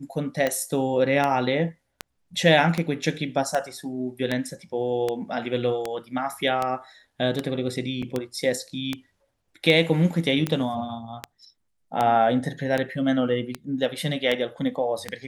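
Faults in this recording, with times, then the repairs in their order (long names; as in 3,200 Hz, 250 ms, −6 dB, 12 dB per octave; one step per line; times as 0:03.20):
scratch tick 78 rpm −11 dBFS
0:08.02–0:08.03: drop-out 5.1 ms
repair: click removal
repair the gap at 0:08.02, 5.1 ms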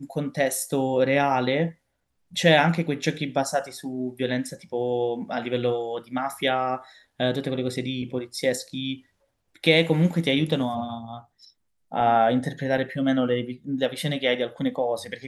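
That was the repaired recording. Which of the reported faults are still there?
none of them is left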